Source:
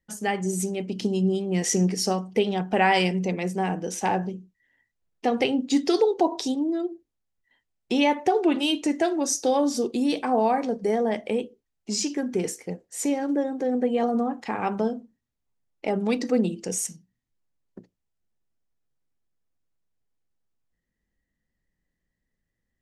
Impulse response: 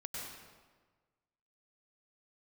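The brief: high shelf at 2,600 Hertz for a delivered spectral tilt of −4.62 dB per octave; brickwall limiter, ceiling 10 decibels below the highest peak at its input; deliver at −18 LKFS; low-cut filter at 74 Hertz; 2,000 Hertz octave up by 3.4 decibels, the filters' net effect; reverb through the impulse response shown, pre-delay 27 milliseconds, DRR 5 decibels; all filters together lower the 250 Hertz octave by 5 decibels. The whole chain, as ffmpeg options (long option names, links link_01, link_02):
-filter_complex "[0:a]highpass=74,equalizer=frequency=250:width_type=o:gain=-6.5,equalizer=frequency=2000:width_type=o:gain=7.5,highshelf=frequency=2600:gain=-7.5,alimiter=limit=-17dB:level=0:latency=1,asplit=2[link_01][link_02];[1:a]atrim=start_sample=2205,adelay=27[link_03];[link_02][link_03]afir=irnorm=-1:irlink=0,volume=-5dB[link_04];[link_01][link_04]amix=inputs=2:normalize=0,volume=10dB"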